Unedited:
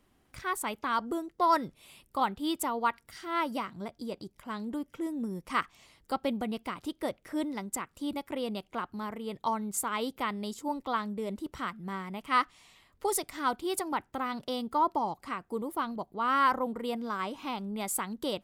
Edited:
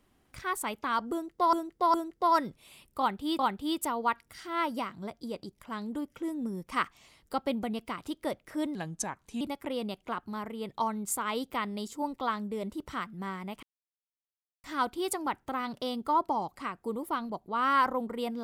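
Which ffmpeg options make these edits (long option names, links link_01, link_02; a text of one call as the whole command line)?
ffmpeg -i in.wav -filter_complex "[0:a]asplit=8[link_01][link_02][link_03][link_04][link_05][link_06][link_07][link_08];[link_01]atrim=end=1.532[link_09];[link_02]atrim=start=1.118:end=1.532[link_10];[link_03]atrim=start=1.118:end=2.572[link_11];[link_04]atrim=start=2.168:end=7.534[link_12];[link_05]atrim=start=7.53:end=8.07,asetpts=PTS-STARTPTS,asetrate=36162,aresample=44100,atrim=end_sample=29041,asetpts=PTS-STARTPTS[link_13];[link_06]atrim=start=8.066:end=12.29,asetpts=PTS-STARTPTS,afade=type=out:start_time=4.22:duration=0.004:curve=hsin[link_14];[link_07]atrim=start=12.29:end=13.3,asetpts=PTS-STARTPTS,volume=0[link_15];[link_08]atrim=start=13.3,asetpts=PTS-STARTPTS,afade=type=in:duration=0.004:curve=hsin[link_16];[link_09][link_10]acrossfade=duration=0.004:curve1=hsin:curve2=hsin[link_17];[link_17][link_11]acrossfade=duration=0.004:curve1=hsin:curve2=hsin[link_18];[link_18][link_12]acrossfade=duration=0.004:curve1=hsin:curve2=hsin[link_19];[link_19][link_13]acrossfade=duration=0.004:curve1=hsin:curve2=hsin[link_20];[link_14][link_15][link_16]concat=n=3:v=0:a=1[link_21];[link_20][link_21]acrossfade=duration=0.004:curve1=hsin:curve2=hsin" out.wav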